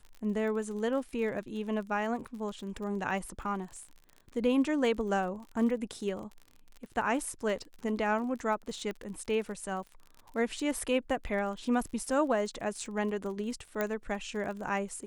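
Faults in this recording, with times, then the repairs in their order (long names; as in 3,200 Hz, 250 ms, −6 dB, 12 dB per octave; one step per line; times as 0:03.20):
surface crackle 43 per second −40 dBFS
0:08.91: click −26 dBFS
0:13.81: click −17 dBFS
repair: click removal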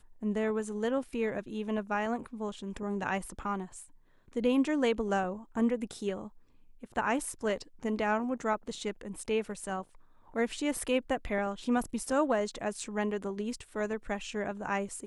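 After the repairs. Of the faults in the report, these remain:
0:08.91: click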